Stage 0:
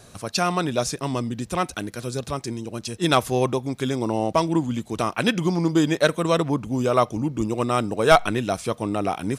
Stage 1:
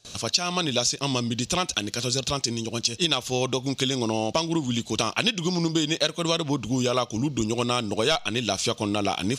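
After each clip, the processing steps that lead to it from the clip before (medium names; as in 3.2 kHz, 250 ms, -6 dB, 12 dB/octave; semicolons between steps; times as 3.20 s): gate with hold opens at -39 dBFS; high-order bell 4.3 kHz +13 dB; compression 6:1, threshold -22 dBFS, peak gain reduction 14.5 dB; trim +1.5 dB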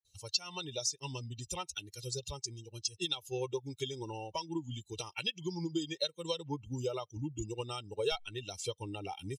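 expander on every frequency bin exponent 2; peaking EQ 1.6 kHz -9 dB 0.85 oct; comb 2.2 ms, depth 75%; trim -8 dB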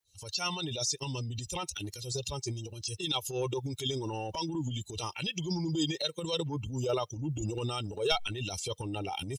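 transient shaper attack -9 dB, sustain +9 dB; trim +5.5 dB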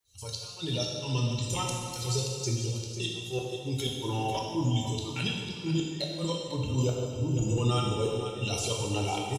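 inverted gate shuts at -23 dBFS, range -28 dB; delay 498 ms -11 dB; plate-style reverb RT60 1.8 s, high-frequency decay 1×, DRR -2 dB; trim +2 dB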